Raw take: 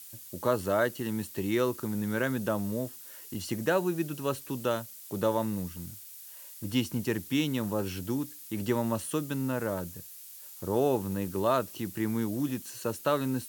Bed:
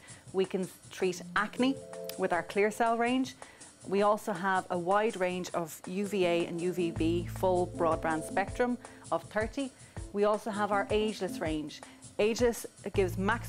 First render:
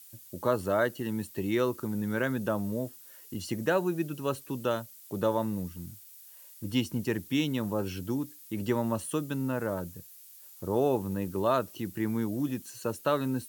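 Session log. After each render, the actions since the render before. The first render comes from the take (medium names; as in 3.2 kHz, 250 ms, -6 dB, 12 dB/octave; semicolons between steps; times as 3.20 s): noise reduction 6 dB, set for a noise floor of -47 dBFS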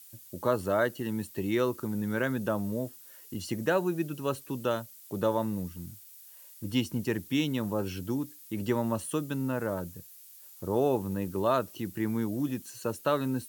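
no audible change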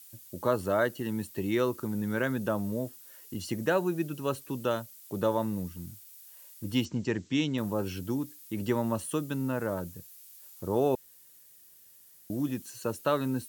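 6.85–7.58 s: steep low-pass 7.7 kHz 96 dB/octave; 10.95–12.30 s: room tone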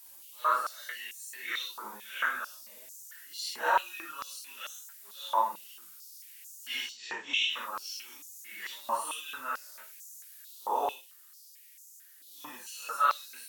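phase randomisation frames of 200 ms; step-sequenced high-pass 4.5 Hz 950–6600 Hz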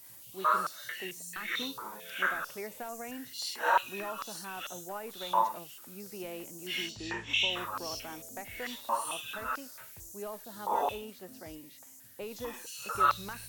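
add bed -13.5 dB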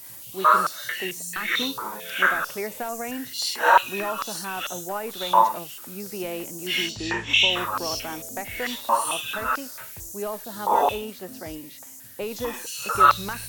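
trim +10 dB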